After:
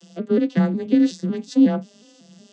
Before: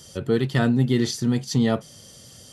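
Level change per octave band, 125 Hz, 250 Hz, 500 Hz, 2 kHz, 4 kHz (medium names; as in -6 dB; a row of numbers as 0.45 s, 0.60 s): -5.0 dB, +4.5 dB, +0.5 dB, -5.5 dB, -7.5 dB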